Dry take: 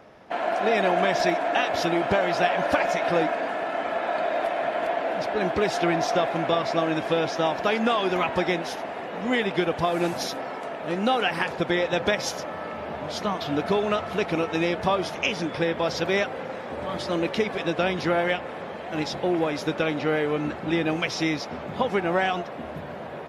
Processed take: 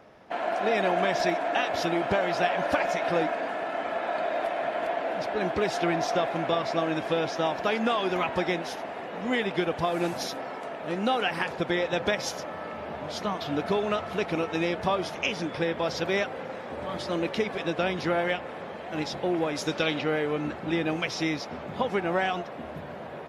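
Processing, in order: 19.55–20 bell 9100 Hz -> 2800 Hz +11 dB 1.2 oct; gain -3 dB

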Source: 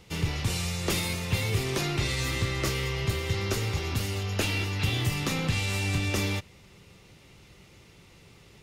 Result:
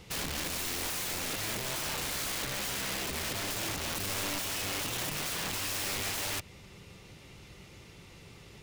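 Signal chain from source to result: compressor 20:1, threshold -30 dBFS, peak gain reduction 10 dB; wrapped overs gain 32 dB; gain +2 dB

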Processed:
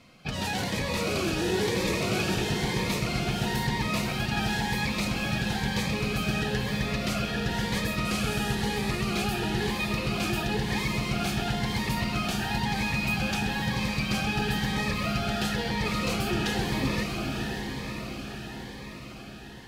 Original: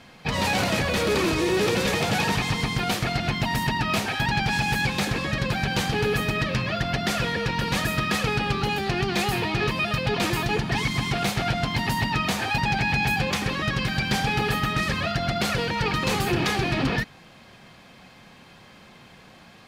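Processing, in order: 8.05–8.55 delta modulation 64 kbps, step -26 dBFS; on a send: diffused feedback echo 0.52 s, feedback 69%, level -4 dB; on the sum: cascading phaser rising 1 Hz; gain -5 dB

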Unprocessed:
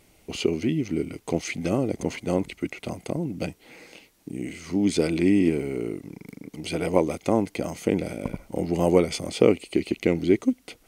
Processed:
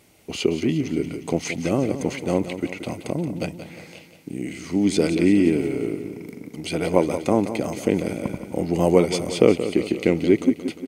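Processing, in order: HPF 75 Hz; feedback echo 0.177 s, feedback 56%, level -11 dB; gain +2.5 dB

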